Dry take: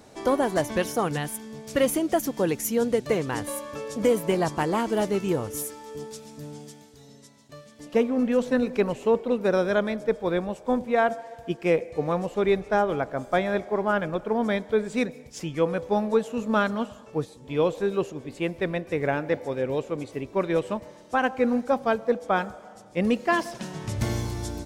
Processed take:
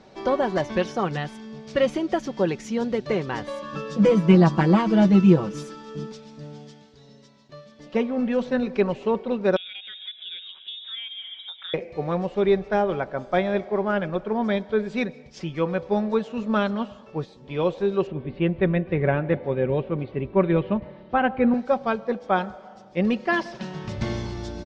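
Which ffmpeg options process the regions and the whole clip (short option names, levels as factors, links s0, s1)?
-filter_complex "[0:a]asettb=1/sr,asplit=3[s0][s1][s2];[s0]atrim=end=3.624[s3];[s1]atrim=start=3.62:end=6.12,asetpts=PTS-STARTPTS,afade=t=in:d=0.004:c=qsin,afade=t=out:st=2.496:d=0.004:c=qsin,equalizer=f=200:w=2:g=9,aecho=1:1:6.1:0.93,atrim=end_sample=110250[s4];[s2]atrim=start=6.116[s5];[s3][s4]acrossfade=d=0.004:c1=hsin:c2=qsin[s6];[s6][s5]acrossfade=d=0.004:c1=qsin:c2=hsin,asettb=1/sr,asplit=3[s7][s8][s9];[s7]atrim=end=9.564[s10];[s8]atrim=start=9.56:end=11.74,asetpts=PTS-STARTPTS,afade=t=in:d=0.004:c=qsin,afade=t=out:st=2.176:d=0.004:c=qsin,lowpass=f=3300:t=q:w=0.5098,lowpass=f=3300:t=q:w=0.6013,lowpass=f=3300:t=q:w=0.9,lowpass=f=3300:t=q:w=2.563,afreqshift=-3900,bandreject=f=620:w=16,acompressor=threshold=0.0224:ratio=12:attack=3.2:release=140:knee=1:detection=peak[s11];[s9]atrim=start=11.736[s12];[s10][s11]acrossfade=d=0.004:c1=hsin:c2=qsin[s13];[s13][s12]acrossfade=d=0.004:c1=qsin:c2=hsin,asettb=1/sr,asplit=3[s14][s15][s16];[s14]atrim=end=18.074[s17];[s15]atrim=start=18.07:end=21.54,asetpts=PTS-STARTPTS,afade=t=in:d=0.004:c=qsin,afade=t=out:st=3.466:d=0.004:c=qsin,lowpass=f=3400:w=0.5412,lowpass=f=3400:w=1.3066,equalizer=f=68:w=0.31:g=11[s18];[s16]atrim=start=21.536[s19];[s17][s18]acrossfade=d=0.004:c1=hsin:c2=qsin[s20];[s20][s19]acrossfade=d=0.004:c1=qsin:c2=hsin,lowpass=f=5100:w=0.5412,lowpass=f=5100:w=1.3066,aecho=1:1:5.3:0.41"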